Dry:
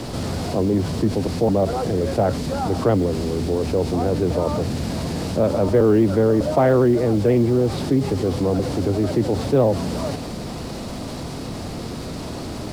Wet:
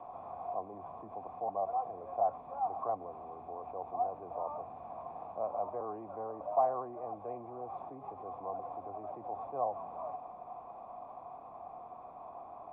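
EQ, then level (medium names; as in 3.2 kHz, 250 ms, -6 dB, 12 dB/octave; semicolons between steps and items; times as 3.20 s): cascade formant filter a; bass shelf 490 Hz -11.5 dB; +2.0 dB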